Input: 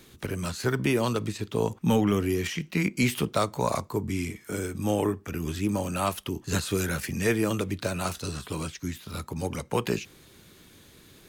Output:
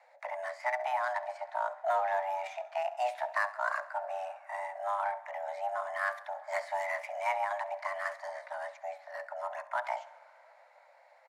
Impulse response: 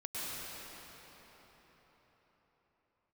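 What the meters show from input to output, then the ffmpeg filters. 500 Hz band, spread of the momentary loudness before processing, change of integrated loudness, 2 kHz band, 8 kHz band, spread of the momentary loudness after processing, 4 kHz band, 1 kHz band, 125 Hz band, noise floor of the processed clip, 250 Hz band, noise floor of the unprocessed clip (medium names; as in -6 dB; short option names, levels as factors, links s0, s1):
-6.5 dB, 9 LU, -6.5 dB, -1.5 dB, -21.0 dB, 9 LU, -16.5 dB, +2.0 dB, under -40 dB, -61 dBFS, under -40 dB, -54 dBFS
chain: -filter_complex "[0:a]highshelf=f=2000:t=q:w=3:g=-7.5,bandreject=f=69.14:t=h:w=4,bandreject=f=138.28:t=h:w=4,bandreject=f=207.42:t=h:w=4,bandreject=f=276.56:t=h:w=4,bandreject=f=345.7:t=h:w=4,bandreject=f=414.84:t=h:w=4,bandreject=f=483.98:t=h:w=4,bandreject=f=553.12:t=h:w=4,bandreject=f=622.26:t=h:w=4,bandreject=f=691.4:t=h:w=4,afreqshift=490,adynamicsmooth=sensitivity=5:basefreq=4800,aecho=1:1:68|136|204|272:0.133|0.0653|0.032|0.0157,asplit=2[s0][s1];[1:a]atrim=start_sample=2205,adelay=145[s2];[s1][s2]afir=irnorm=-1:irlink=0,volume=0.0531[s3];[s0][s3]amix=inputs=2:normalize=0,volume=0.447"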